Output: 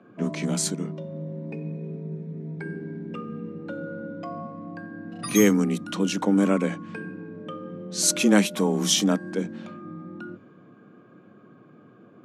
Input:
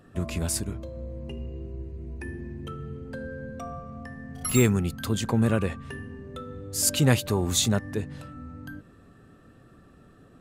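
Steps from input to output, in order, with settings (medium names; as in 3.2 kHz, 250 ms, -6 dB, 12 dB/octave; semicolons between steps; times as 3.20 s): level-controlled noise filter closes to 2.7 kHz, open at -23 dBFS; frequency shift +120 Hz; tape speed -15%; trim +2 dB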